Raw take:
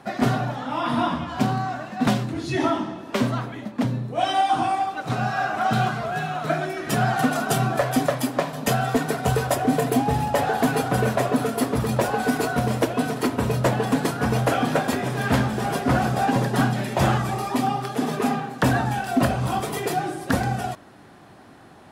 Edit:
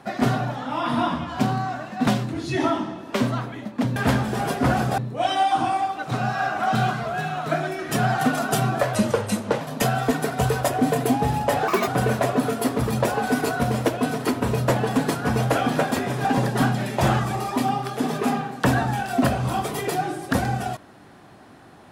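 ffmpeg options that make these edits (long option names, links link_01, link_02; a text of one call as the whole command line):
ffmpeg -i in.wav -filter_complex "[0:a]asplit=8[link_01][link_02][link_03][link_04][link_05][link_06][link_07][link_08];[link_01]atrim=end=3.962[link_09];[link_02]atrim=start=15.208:end=16.232[link_10];[link_03]atrim=start=3.958:end=7.934[link_11];[link_04]atrim=start=7.93:end=8.47,asetpts=PTS-STARTPTS,asetrate=36162,aresample=44100,atrim=end_sample=29041,asetpts=PTS-STARTPTS[link_12];[link_05]atrim=start=8.466:end=10.544[link_13];[link_06]atrim=start=10.54:end=10.84,asetpts=PTS-STARTPTS,asetrate=66591,aresample=44100[link_14];[link_07]atrim=start=10.836:end=15.212[link_15];[link_08]atrim=start=16.228[link_16];[link_09][link_10]acrossfade=duration=0.004:curve1=hsin:curve2=hsin[link_17];[link_17][link_11]acrossfade=duration=0.004:curve1=hsin:curve2=hsin[link_18];[link_18][link_12]acrossfade=duration=0.004:curve1=hsin:curve2=hsin[link_19];[link_19][link_13]acrossfade=duration=0.004:curve1=hsin:curve2=hsin[link_20];[link_20][link_14]acrossfade=duration=0.004:curve1=hsin:curve2=hsin[link_21];[link_21][link_15]acrossfade=duration=0.004:curve1=hsin:curve2=hsin[link_22];[link_22][link_16]acrossfade=duration=0.004:curve1=hsin:curve2=hsin" out.wav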